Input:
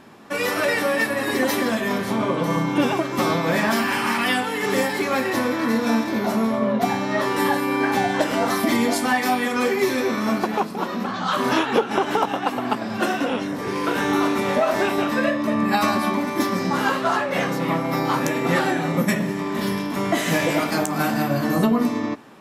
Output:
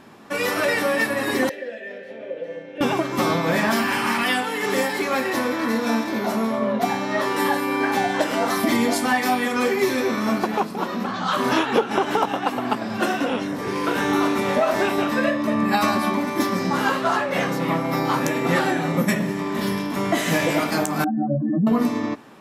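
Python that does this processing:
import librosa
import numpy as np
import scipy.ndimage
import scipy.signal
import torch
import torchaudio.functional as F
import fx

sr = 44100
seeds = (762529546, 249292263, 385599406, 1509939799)

y = fx.vowel_filter(x, sr, vowel='e', at=(1.49, 2.81))
y = fx.low_shelf(y, sr, hz=110.0, db=-12.0, at=(4.23, 8.57))
y = fx.spec_expand(y, sr, power=3.2, at=(21.04, 21.67))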